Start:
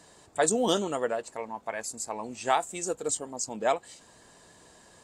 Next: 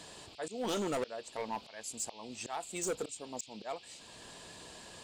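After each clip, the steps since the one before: auto swell 0.634 s; band noise 2400–5000 Hz -61 dBFS; hard clip -33.5 dBFS, distortion -9 dB; gain +3.5 dB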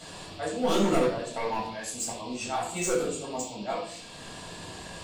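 shoebox room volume 800 m³, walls furnished, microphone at 7 m

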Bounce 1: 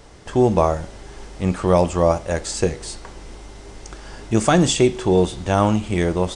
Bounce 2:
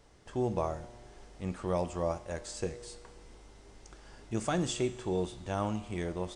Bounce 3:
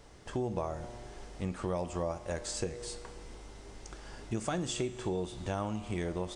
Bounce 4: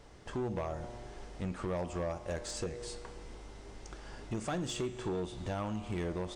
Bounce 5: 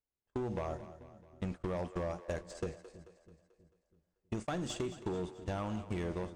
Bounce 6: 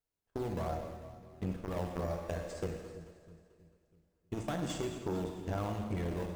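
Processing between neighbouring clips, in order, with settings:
resonator 120 Hz, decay 1.8 s, mix 60%; gain -8 dB
compressor 4:1, threshold -37 dBFS, peak gain reduction 10 dB; gain +5.5 dB
hard clip -30 dBFS, distortion -13 dB; high shelf 6500 Hz -6.5 dB
gate -37 dBFS, range -48 dB; compressor, threshold -39 dBFS, peak gain reduction 7 dB; split-band echo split 350 Hz, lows 0.324 s, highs 0.219 s, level -14 dB; gain +5 dB
in parallel at -8.5 dB: decimation with a swept rate 14×, swing 100% 2.3 Hz; on the sum: two-slope reverb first 1 s, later 2.5 s, DRR 3 dB; core saturation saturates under 300 Hz; gain -1 dB

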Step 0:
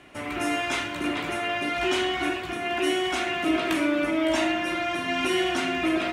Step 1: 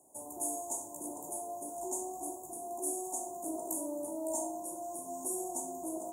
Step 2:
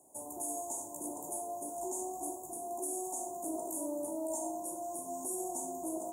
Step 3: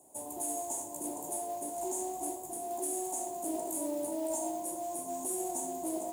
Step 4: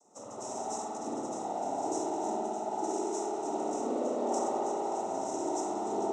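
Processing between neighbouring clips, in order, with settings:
Chebyshev band-stop 920–6800 Hz, order 5; tilt +4.5 dB/oct; gain -7.5 dB
limiter -28.5 dBFS, peak gain reduction 7.5 dB; gain +1 dB
modulation noise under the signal 21 dB; gain +2.5 dB
noise vocoder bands 12; reverb RT60 3.3 s, pre-delay 56 ms, DRR -6 dB; gain -2 dB

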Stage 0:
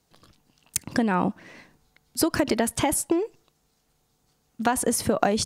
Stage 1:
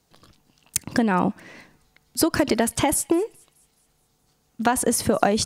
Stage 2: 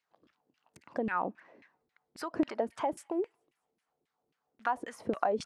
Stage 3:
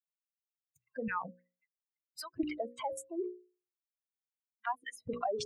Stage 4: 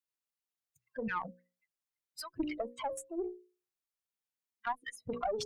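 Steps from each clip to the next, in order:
thin delay 0.211 s, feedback 49%, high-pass 2800 Hz, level -24 dB; gain +2.5 dB
LFO band-pass saw down 3.7 Hz 270–2400 Hz; gain -5 dB
per-bin expansion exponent 3; notches 60/120/180/240/300/360/420/480/540 Hz; in parallel at 0 dB: negative-ratio compressor -46 dBFS, ratio -1; on the sum: gain -1.5 dB
tube stage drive 25 dB, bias 0.35; gain +1.5 dB

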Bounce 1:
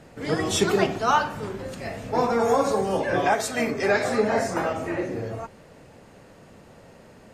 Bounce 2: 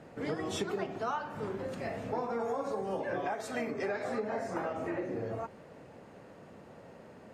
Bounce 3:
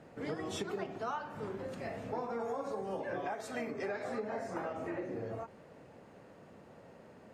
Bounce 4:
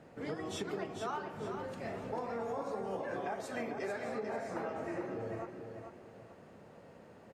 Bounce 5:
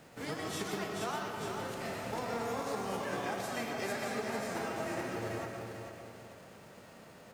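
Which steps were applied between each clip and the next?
HPF 160 Hz 6 dB/oct; high shelf 2700 Hz -11 dB; compressor 6:1, threshold -31 dBFS, peak gain reduction 13.5 dB; gain -1 dB
ending taper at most 300 dB/s; gain -3.5 dB
feedback echo 0.443 s, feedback 33%, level -7 dB; gain -1 dB
spectral whitening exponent 0.6; digital reverb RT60 1.5 s, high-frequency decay 0.45×, pre-delay 80 ms, DRR 3 dB

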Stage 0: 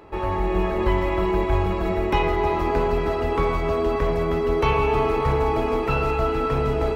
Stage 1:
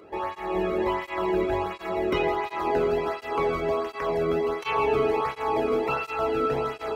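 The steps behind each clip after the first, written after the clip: tape flanging out of phase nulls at 1.4 Hz, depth 1.2 ms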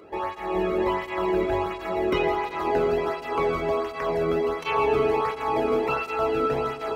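reverb RT60 2.7 s, pre-delay 0.113 s, DRR 13.5 dB; gain +1 dB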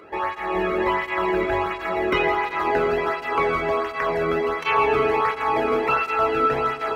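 bell 1700 Hz +9.5 dB 1.5 oct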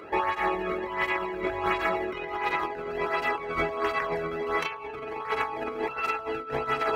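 negative-ratio compressor -26 dBFS, ratio -0.5; gain -2.5 dB

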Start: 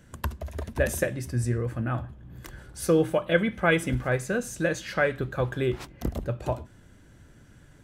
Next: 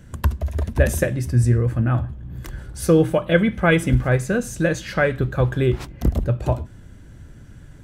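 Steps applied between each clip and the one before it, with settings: low shelf 190 Hz +9.5 dB; gain +4 dB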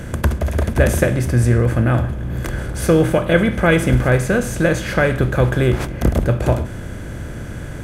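per-bin compression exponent 0.6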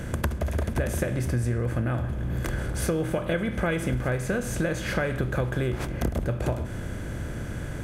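compressor, threshold -19 dBFS, peak gain reduction 11 dB; gain -4 dB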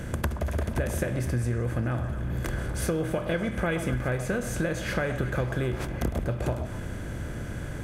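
delay with a stepping band-pass 0.124 s, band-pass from 810 Hz, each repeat 0.7 oct, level -7.5 dB; gain -1.5 dB

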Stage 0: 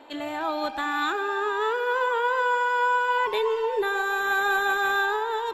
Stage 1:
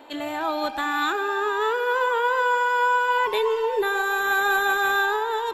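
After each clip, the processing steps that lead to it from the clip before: high shelf 11000 Hz +10 dB; gain +2 dB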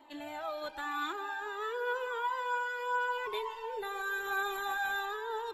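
cascading flanger falling 0.87 Hz; gain -8 dB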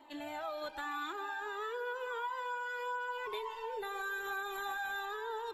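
compressor 4:1, threshold -36 dBFS, peak gain reduction 7.5 dB

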